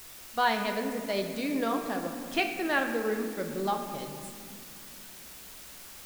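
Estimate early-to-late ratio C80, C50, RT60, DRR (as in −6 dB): 7.5 dB, 6.0 dB, 2.3 s, 4.0 dB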